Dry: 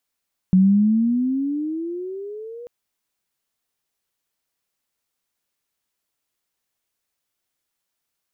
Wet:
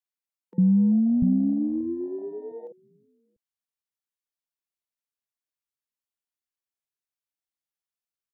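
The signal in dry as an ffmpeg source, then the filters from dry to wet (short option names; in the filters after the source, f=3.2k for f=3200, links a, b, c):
-f lavfi -i "aevalsrc='pow(10,(-10-23.5*t/2.14)/20)*sin(2*PI*183*2.14/(17*log(2)/12)*(exp(17*log(2)/12*t/2.14)-1))':d=2.14:s=44100"
-filter_complex "[0:a]afwtdn=0.0447,acrossover=split=160|480[a][b][c];[b]adelay=50[d];[a]adelay=690[e];[e][d][c]amix=inputs=3:normalize=0"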